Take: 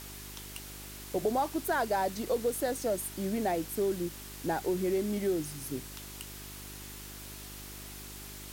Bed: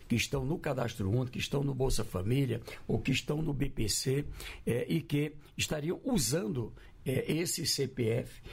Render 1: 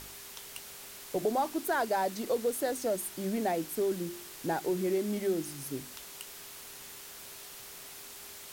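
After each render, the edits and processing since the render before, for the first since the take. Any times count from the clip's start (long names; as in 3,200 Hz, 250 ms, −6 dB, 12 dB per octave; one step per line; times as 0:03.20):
hum removal 50 Hz, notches 7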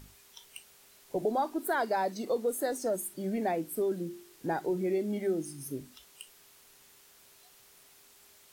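noise reduction from a noise print 12 dB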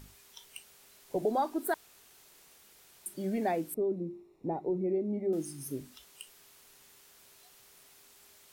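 0:01.74–0:03.06: fill with room tone
0:03.74–0:05.33: moving average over 28 samples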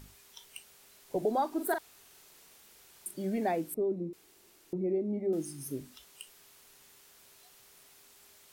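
0:01.48–0:03.11: double-tracking delay 43 ms −6 dB
0:04.13–0:04.73: fill with room tone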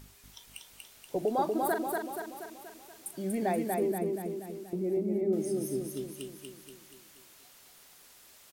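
repeating echo 239 ms, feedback 55%, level −3 dB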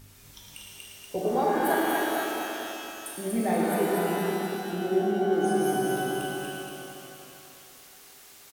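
slap from a distant wall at 19 metres, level −7 dB
reverb with rising layers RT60 2.7 s, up +12 semitones, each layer −8 dB, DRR −3 dB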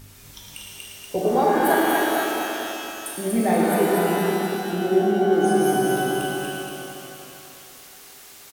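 level +6 dB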